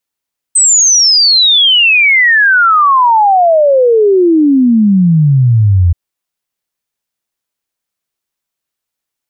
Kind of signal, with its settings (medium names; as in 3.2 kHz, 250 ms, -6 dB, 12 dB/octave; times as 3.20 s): log sweep 8.3 kHz -> 83 Hz 5.38 s -4.5 dBFS